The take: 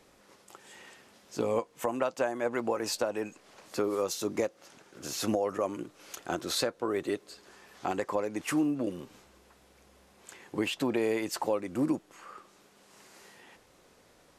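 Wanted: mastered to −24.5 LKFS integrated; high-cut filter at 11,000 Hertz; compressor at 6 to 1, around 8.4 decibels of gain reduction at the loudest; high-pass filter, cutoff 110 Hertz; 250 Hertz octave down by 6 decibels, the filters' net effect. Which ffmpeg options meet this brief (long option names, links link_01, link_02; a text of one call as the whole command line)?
ffmpeg -i in.wav -af "highpass=110,lowpass=11000,equalizer=frequency=250:width_type=o:gain=-8,acompressor=threshold=-35dB:ratio=6,volume=16.5dB" out.wav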